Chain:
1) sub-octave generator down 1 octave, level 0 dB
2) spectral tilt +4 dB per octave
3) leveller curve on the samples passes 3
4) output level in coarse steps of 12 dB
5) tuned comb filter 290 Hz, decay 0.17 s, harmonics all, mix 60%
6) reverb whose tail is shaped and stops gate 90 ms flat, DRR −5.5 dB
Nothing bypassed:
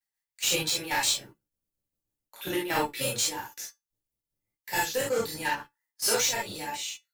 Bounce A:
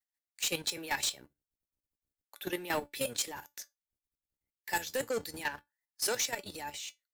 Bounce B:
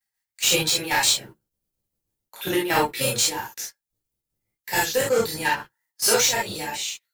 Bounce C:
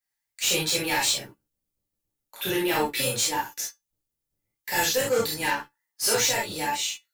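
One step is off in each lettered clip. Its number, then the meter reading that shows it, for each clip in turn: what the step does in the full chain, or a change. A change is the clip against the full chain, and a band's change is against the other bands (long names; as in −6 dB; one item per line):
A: 6, change in crest factor −2.5 dB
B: 5, change in integrated loudness +6.0 LU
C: 4, change in integrated loudness +3.0 LU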